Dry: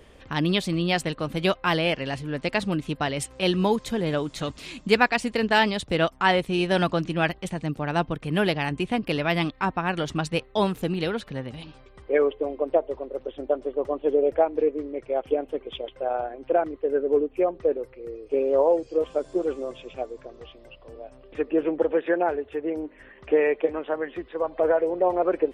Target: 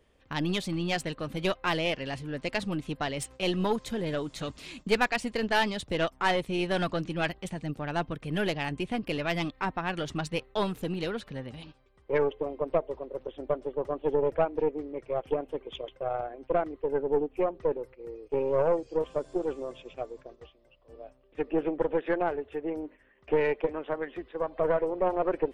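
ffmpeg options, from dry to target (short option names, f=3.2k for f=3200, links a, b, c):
-af "aeval=exprs='0.596*(cos(1*acos(clip(val(0)/0.596,-1,1)))-cos(1*PI/2))+0.0422*(cos(5*acos(clip(val(0)/0.596,-1,1)))-cos(5*PI/2))+0.0596*(cos(6*acos(clip(val(0)/0.596,-1,1)))-cos(6*PI/2))+0.00473*(cos(7*acos(clip(val(0)/0.596,-1,1)))-cos(7*PI/2))':c=same,agate=range=-10dB:threshold=-40dB:ratio=16:detection=peak,volume=-7dB"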